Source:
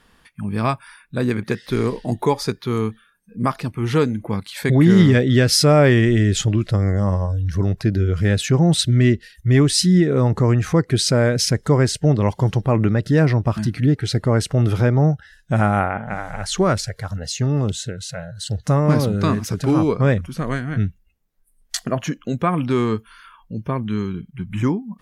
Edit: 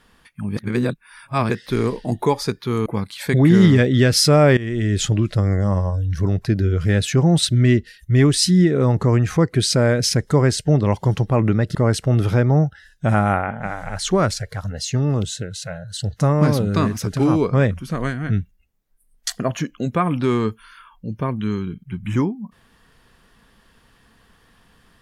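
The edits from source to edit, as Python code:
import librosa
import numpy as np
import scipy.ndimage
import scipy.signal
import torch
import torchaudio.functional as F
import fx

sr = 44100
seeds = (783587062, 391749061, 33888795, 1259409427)

y = fx.edit(x, sr, fx.reverse_span(start_s=0.57, length_s=0.93),
    fx.cut(start_s=2.86, length_s=1.36),
    fx.fade_in_from(start_s=5.93, length_s=0.48, floor_db=-17.5),
    fx.cut(start_s=13.11, length_s=1.11), tone=tone)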